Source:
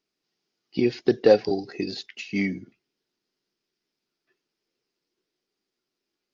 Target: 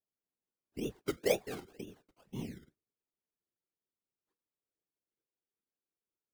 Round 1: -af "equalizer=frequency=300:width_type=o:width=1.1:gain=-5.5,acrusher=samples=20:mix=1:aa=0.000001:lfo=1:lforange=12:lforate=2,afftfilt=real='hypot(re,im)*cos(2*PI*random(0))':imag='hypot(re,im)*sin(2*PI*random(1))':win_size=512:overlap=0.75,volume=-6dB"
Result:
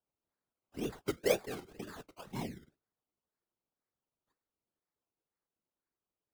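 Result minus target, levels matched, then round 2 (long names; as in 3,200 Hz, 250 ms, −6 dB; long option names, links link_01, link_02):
1,000 Hz band +3.0 dB
-af "lowpass=1100,equalizer=frequency=300:width_type=o:width=1.1:gain=-5.5,acrusher=samples=20:mix=1:aa=0.000001:lfo=1:lforange=12:lforate=2,afftfilt=real='hypot(re,im)*cos(2*PI*random(0))':imag='hypot(re,im)*sin(2*PI*random(1))':win_size=512:overlap=0.75,volume=-6dB"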